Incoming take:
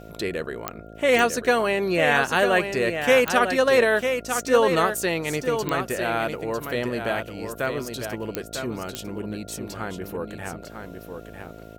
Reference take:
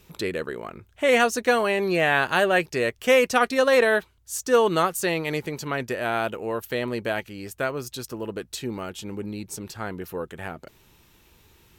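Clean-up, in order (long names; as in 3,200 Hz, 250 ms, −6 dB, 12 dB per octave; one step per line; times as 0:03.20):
click removal
hum removal 54.4 Hz, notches 13
notch filter 1,400 Hz, Q 30
echo removal 950 ms −7 dB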